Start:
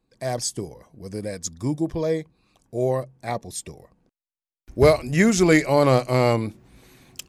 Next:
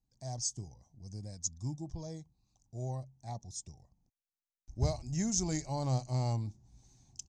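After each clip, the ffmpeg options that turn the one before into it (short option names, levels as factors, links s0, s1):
-af "firequalizer=gain_entry='entry(110,0);entry(160,-7);entry(470,-22);entry(800,-7);entry(1200,-22);entry(2300,-23);entry(6200,4);entry(11000,-28)':delay=0.05:min_phase=1,volume=0.531"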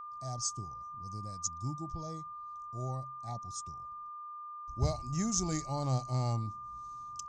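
-af "aeval=exprs='val(0)+0.00794*sin(2*PI*1200*n/s)':c=same"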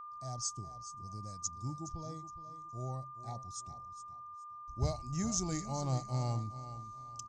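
-af "aecho=1:1:417|834|1251:0.224|0.0627|0.0176,volume=0.75"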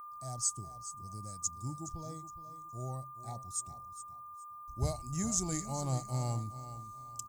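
-af "aexciter=amount=7.7:drive=8.1:freq=8300"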